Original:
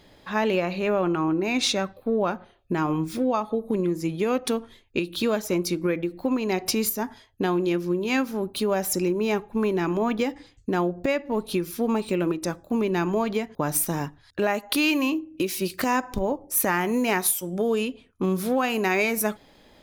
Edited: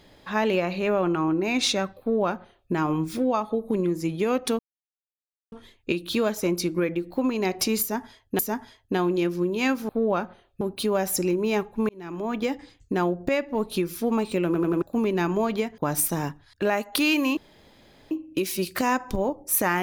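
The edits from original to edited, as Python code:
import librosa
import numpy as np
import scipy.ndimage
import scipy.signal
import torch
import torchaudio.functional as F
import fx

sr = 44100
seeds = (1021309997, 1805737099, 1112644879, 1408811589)

y = fx.edit(x, sr, fx.duplicate(start_s=2.0, length_s=0.72, to_s=8.38),
    fx.insert_silence(at_s=4.59, length_s=0.93),
    fx.repeat(start_s=6.88, length_s=0.58, count=2),
    fx.fade_in_span(start_s=9.66, length_s=0.66),
    fx.stutter_over(start_s=12.23, slice_s=0.09, count=4),
    fx.insert_room_tone(at_s=15.14, length_s=0.74), tone=tone)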